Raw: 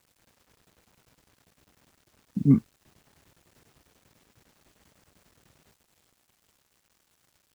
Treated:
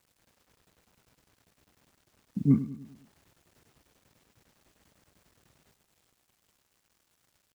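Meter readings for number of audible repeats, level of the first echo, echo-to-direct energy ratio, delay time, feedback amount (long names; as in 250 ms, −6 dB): 4, −14.0 dB, −13.0 dB, 102 ms, 49%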